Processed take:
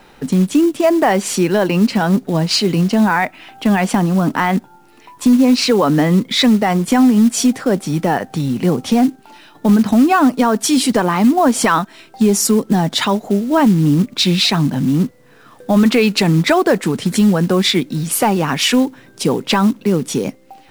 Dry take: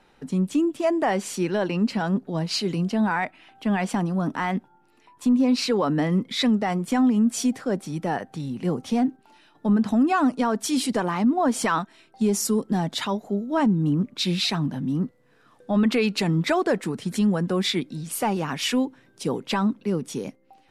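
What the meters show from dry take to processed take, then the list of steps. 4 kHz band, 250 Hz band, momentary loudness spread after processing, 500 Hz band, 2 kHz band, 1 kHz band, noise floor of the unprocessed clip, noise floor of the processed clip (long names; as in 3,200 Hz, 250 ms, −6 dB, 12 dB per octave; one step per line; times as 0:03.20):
+10.5 dB, +9.0 dB, 7 LU, +9.5 dB, +9.5 dB, +9.5 dB, −59 dBFS, −46 dBFS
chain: in parallel at +2.5 dB: downward compressor 16 to 1, threshold −28 dBFS, peak gain reduction 13 dB
on the sum: pitch vibrato 2 Hz 5.1 cents
log-companded quantiser 6 bits
level +6 dB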